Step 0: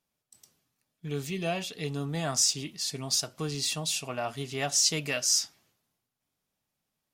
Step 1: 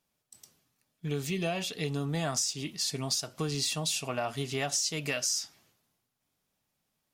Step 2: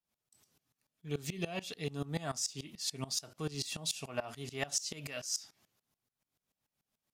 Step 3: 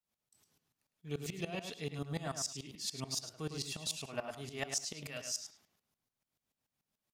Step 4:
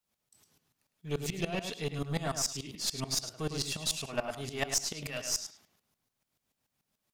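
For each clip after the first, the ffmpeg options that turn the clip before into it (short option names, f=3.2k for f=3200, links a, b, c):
-af "acompressor=threshold=-30dB:ratio=12,volume=3dB"
-af "aeval=exprs='val(0)*pow(10,-20*if(lt(mod(-6.9*n/s,1),2*abs(-6.9)/1000),1-mod(-6.9*n/s,1)/(2*abs(-6.9)/1000),(mod(-6.9*n/s,1)-2*abs(-6.9)/1000)/(1-2*abs(-6.9)/1000))/20)':c=same"
-filter_complex "[0:a]asplit=2[a][b];[b]adelay=105,lowpass=f=4.2k:p=1,volume=-6.5dB,asplit=2[c][d];[d]adelay=105,lowpass=f=4.2k:p=1,volume=0.18,asplit=2[e][f];[f]adelay=105,lowpass=f=4.2k:p=1,volume=0.18[g];[a][c][e][g]amix=inputs=4:normalize=0,volume=-2.5dB"
-af "aeval=exprs='0.075*(cos(1*acos(clip(val(0)/0.075,-1,1)))-cos(1*PI/2))+0.00531*(cos(6*acos(clip(val(0)/0.075,-1,1)))-cos(6*PI/2))':c=same,volume=6dB"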